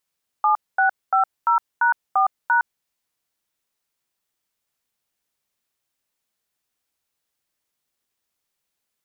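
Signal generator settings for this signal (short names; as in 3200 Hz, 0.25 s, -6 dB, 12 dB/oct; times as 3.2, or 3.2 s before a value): DTMF "7650#4#", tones 0.112 s, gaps 0.231 s, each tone -17 dBFS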